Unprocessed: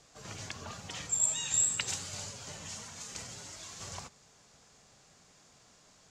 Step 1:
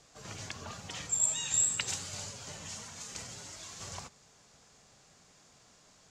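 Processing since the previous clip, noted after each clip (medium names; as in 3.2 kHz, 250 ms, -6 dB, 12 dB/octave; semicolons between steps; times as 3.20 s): no audible change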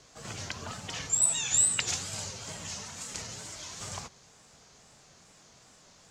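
wow and flutter 120 cents; trim +4 dB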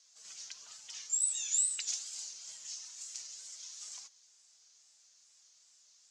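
flange 0.49 Hz, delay 3.5 ms, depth 5.5 ms, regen +46%; band-pass filter 6 kHz, Q 1.7; trim +1.5 dB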